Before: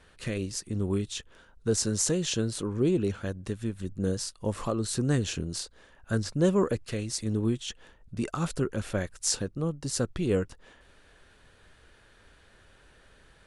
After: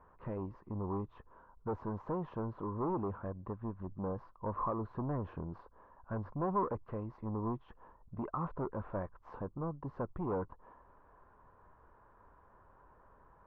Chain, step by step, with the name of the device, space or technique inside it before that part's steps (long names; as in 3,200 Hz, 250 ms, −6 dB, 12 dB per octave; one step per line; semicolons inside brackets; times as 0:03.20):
overdriven synthesiser ladder filter (soft clipping −27 dBFS, distortion −9 dB; transistor ladder low-pass 1,100 Hz, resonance 75%)
level +6 dB